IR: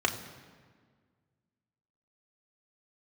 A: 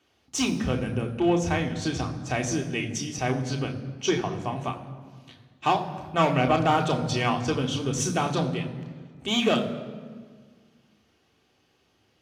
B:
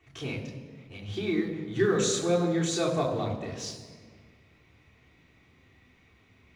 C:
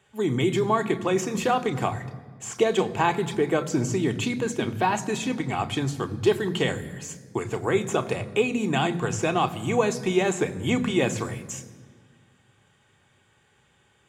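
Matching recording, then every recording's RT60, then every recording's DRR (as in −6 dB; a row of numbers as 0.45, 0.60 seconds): A; 1.7, 1.7, 1.7 seconds; 1.5, −6.5, 8.0 decibels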